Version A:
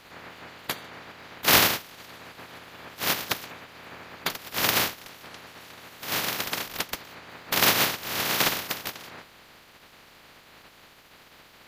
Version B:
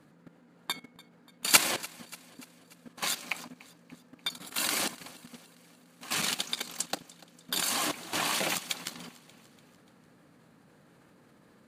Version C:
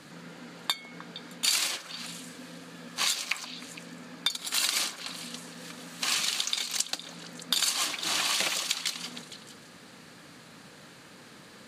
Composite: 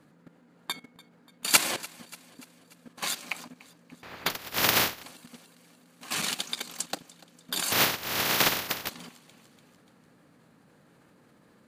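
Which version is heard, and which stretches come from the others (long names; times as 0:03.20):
B
0:04.03–0:05.03: punch in from A
0:07.72–0:08.89: punch in from A
not used: C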